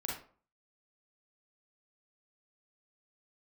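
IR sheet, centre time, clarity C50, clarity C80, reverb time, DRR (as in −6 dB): 42 ms, 1.5 dB, 9.5 dB, 0.45 s, −3.5 dB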